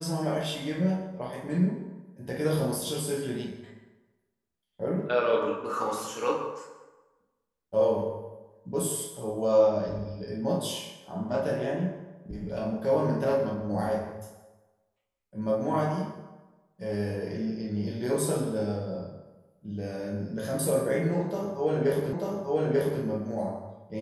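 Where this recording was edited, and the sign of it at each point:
22.13 s: repeat of the last 0.89 s

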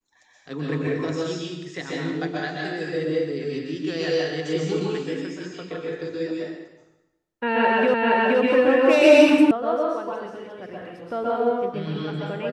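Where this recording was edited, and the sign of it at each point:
7.94 s: repeat of the last 0.47 s
9.51 s: sound stops dead

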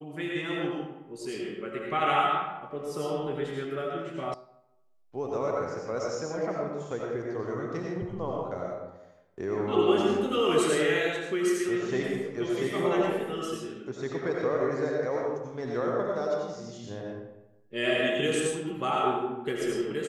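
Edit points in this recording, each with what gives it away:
4.34 s: sound stops dead

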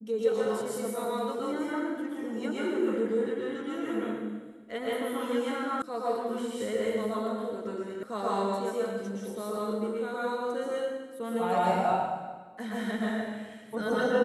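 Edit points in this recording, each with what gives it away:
5.82 s: sound stops dead
8.03 s: sound stops dead

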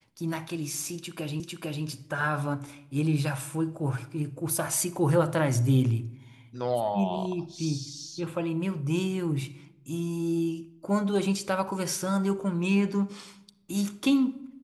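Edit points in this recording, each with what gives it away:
1.40 s: repeat of the last 0.45 s

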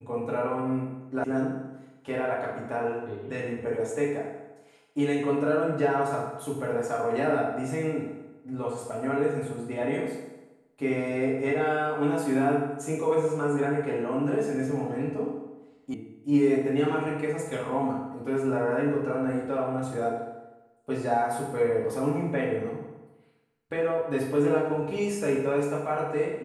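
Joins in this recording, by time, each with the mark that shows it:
1.24 s: sound stops dead
15.94 s: sound stops dead

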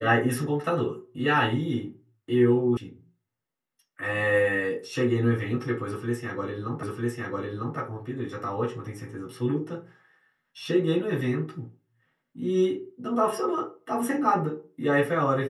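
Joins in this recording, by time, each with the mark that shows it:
2.77 s: sound stops dead
6.83 s: repeat of the last 0.95 s

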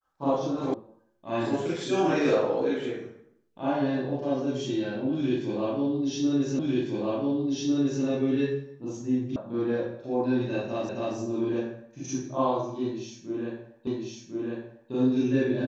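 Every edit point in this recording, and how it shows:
0.74 s: sound stops dead
6.59 s: repeat of the last 1.45 s
9.36 s: sound stops dead
10.89 s: repeat of the last 0.27 s
13.87 s: repeat of the last 1.05 s

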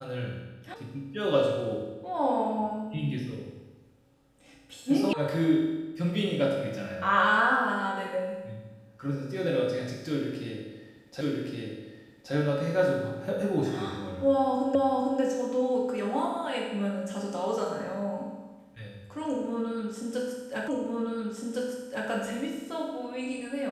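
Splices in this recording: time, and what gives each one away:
0.74 s: sound stops dead
5.13 s: sound stops dead
11.21 s: repeat of the last 1.12 s
14.75 s: repeat of the last 0.45 s
20.68 s: repeat of the last 1.41 s

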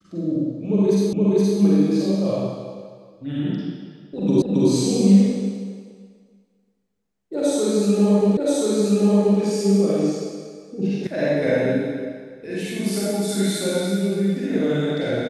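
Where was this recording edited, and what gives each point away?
1.13 s: repeat of the last 0.47 s
4.42 s: repeat of the last 0.27 s
8.37 s: repeat of the last 1.03 s
11.07 s: sound stops dead

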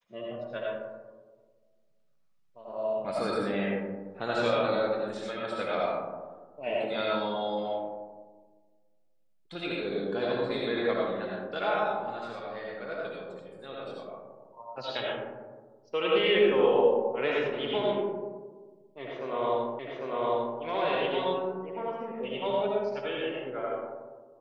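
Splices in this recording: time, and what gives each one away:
19.79 s: repeat of the last 0.8 s

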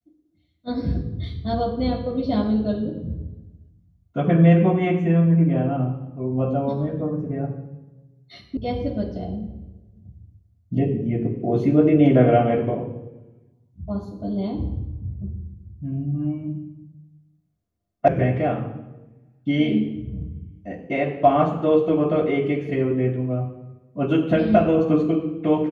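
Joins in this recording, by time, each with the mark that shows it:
8.57 s: sound stops dead
18.08 s: sound stops dead

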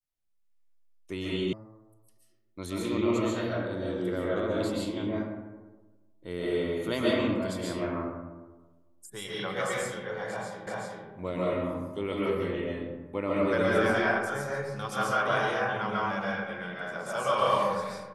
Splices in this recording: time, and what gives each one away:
1.53 s: sound stops dead
10.67 s: repeat of the last 0.38 s

